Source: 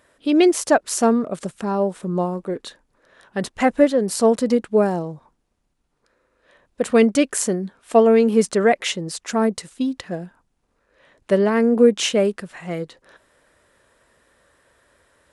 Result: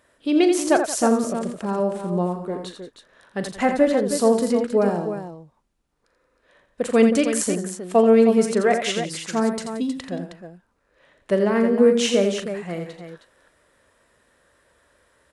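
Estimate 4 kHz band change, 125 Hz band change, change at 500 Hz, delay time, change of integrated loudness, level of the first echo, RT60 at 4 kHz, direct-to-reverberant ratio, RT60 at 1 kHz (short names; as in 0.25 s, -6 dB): -1.5 dB, -1.0 dB, -1.0 dB, 40 ms, -1.5 dB, -12.0 dB, none, none, none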